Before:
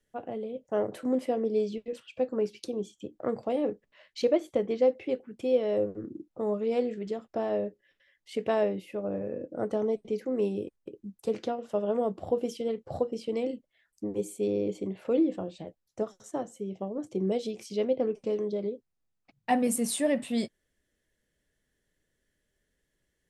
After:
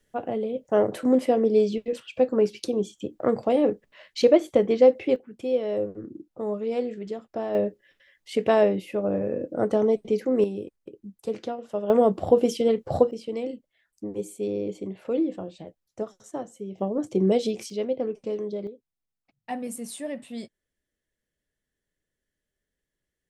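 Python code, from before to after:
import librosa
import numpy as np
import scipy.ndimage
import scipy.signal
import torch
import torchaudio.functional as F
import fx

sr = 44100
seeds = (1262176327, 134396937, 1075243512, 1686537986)

y = fx.gain(x, sr, db=fx.steps((0.0, 7.5), (5.16, 0.5), (7.55, 7.0), (10.44, 0.0), (11.9, 9.5), (13.11, 0.0), (16.78, 7.5), (17.7, 0.0), (18.67, -7.0)))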